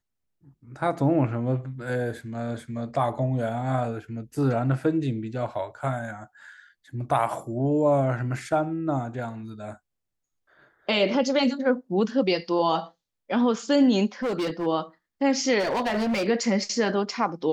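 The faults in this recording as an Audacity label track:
14.230000	14.670000	clipped -23.5 dBFS
15.590000	16.270000	clipped -22 dBFS

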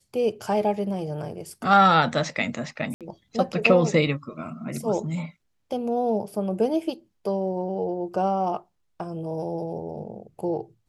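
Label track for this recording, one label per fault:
2.940000	3.010000	gap 67 ms

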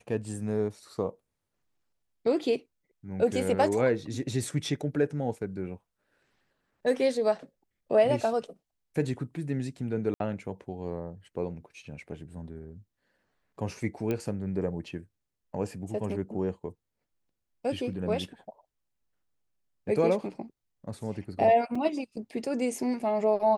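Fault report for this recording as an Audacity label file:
10.140000	10.200000	gap 62 ms
14.110000	14.110000	pop -18 dBFS
21.750000	21.750000	gap 4 ms

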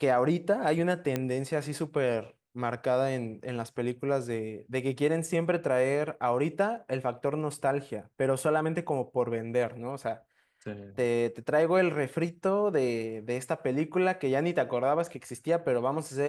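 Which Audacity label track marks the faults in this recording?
1.160000	1.160000	pop -15 dBFS

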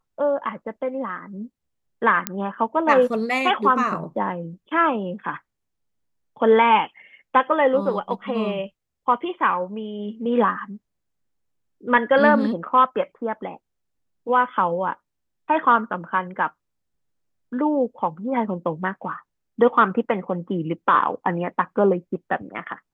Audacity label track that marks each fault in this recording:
2.270000	2.270000	pop -4 dBFS

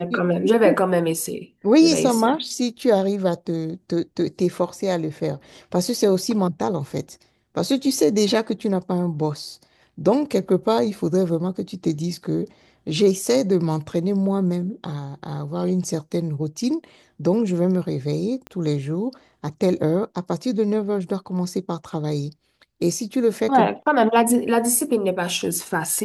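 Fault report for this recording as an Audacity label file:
18.470000	18.470000	pop -21 dBFS

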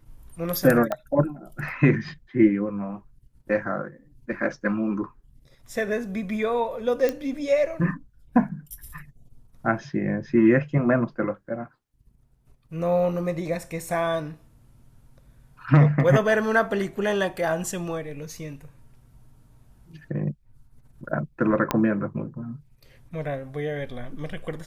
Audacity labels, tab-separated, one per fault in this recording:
0.920000	0.920000	pop -14 dBFS
7.090000	7.090000	pop -12 dBFS
21.710000	21.710000	pop -7 dBFS

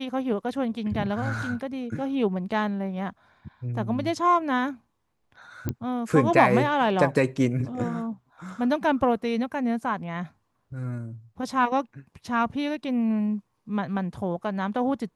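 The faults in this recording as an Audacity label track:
5.690000	5.690000	pop -15 dBFS

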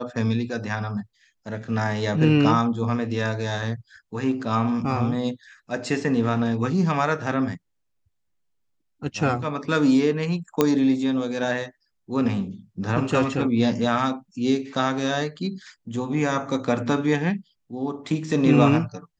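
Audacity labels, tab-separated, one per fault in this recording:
10.610000	10.610000	pop -5 dBFS

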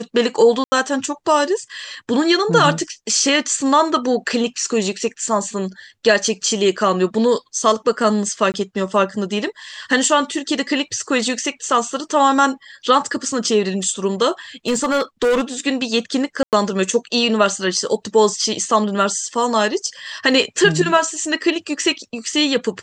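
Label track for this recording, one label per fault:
0.640000	0.720000	gap 80 ms
8.520000	8.540000	gap 19 ms
14.670000	15.410000	clipped -13 dBFS
16.430000	16.530000	gap 98 ms

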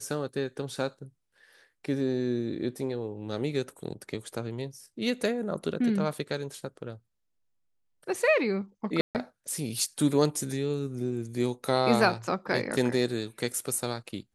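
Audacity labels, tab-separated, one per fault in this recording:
9.010000	9.150000	gap 0.138 s

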